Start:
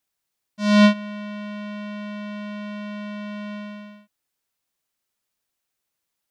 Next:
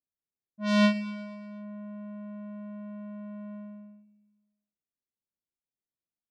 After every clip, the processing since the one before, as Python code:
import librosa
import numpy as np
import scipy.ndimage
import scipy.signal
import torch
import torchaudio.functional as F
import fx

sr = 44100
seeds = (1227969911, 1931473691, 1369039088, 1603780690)

y = fx.env_lowpass(x, sr, base_hz=360.0, full_db=-17.5)
y = fx.low_shelf(y, sr, hz=170.0, db=-4.5)
y = fx.echo_feedback(y, sr, ms=120, feedback_pct=59, wet_db=-16.0)
y = F.gain(torch.from_numpy(y), -7.0).numpy()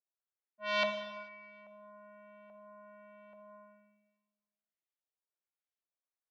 y = scipy.signal.sosfilt(scipy.signal.butter(4, 420.0, 'highpass', fs=sr, output='sos'), x)
y = fx.filter_lfo_lowpass(y, sr, shape='saw_up', hz=1.2, low_hz=770.0, high_hz=4200.0, q=1.3)
y = fx.rev_gated(y, sr, seeds[0], gate_ms=470, shape='falling', drr_db=6.5)
y = F.gain(torch.from_numpy(y), -4.0).numpy()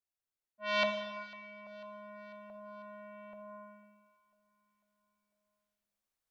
y = fx.low_shelf(x, sr, hz=100.0, db=11.5)
y = fx.rider(y, sr, range_db=4, speed_s=2.0)
y = fx.echo_feedback(y, sr, ms=497, feedback_pct=59, wet_db=-22)
y = F.gain(torch.from_numpy(y), 1.5).numpy()